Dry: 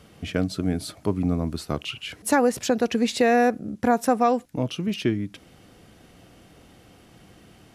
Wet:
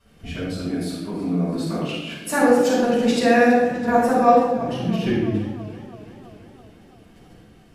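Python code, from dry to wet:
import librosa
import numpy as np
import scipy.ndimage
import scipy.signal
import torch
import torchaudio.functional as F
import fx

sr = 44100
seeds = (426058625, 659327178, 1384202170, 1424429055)

y = fx.highpass(x, sr, hz=170.0, slope=24, at=(0.57, 2.9))
y = fx.level_steps(y, sr, step_db=10)
y = fx.room_shoebox(y, sr, seeds[0], volume_m3=490.0, walls='mixed', distance_m=9.3)
y = fx.echo_warbled(y, sr, ms=331, feedback_pct=64, rate_hz=2.8, cents=57, wet_db=-17)
y = y * librosa.db_to_amplitude(-11.0)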